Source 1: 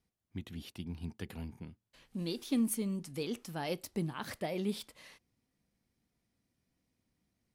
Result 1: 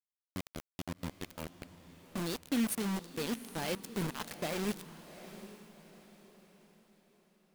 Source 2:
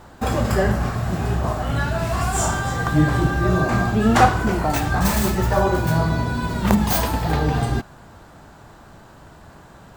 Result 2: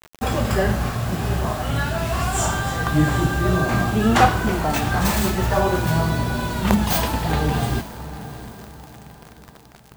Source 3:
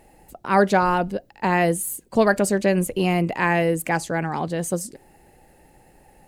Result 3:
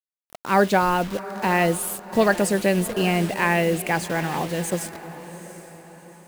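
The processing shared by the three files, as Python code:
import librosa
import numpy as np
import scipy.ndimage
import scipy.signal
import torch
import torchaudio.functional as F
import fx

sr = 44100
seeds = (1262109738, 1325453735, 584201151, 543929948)

y = fx.quant_dither(x, sr, seeds[0], bits=6, dither='none')
y = fx.echo_diffused(y, sr, ms=768, feedback_pct=41, wet_db=-13.5)
y = fx.dynamic_eq(y, sr, hz=3000.0, q=1.4, threshold_db=-41.0, ratio=4.0, max_db=4)
y = F.gain(torch.from_numpy(y), -1.0).numpy()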